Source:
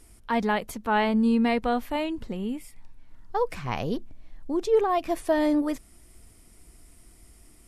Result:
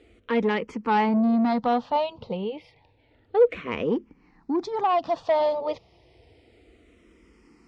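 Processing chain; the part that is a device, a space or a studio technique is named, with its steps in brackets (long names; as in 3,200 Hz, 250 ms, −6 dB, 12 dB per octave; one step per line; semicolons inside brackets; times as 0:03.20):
barber-pole phaser into a guitar amplifier (frequency shifter mixed with the dry sound −0.3 Hz; soft clipping −24.5 dBFS, distortion −12 dB; loudspeaker in its box 100–4,500 Hz, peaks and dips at 480 Hz +8 dB, 860 Hz +5 dB, 1,600 Hz −6 dB)
level +6 dB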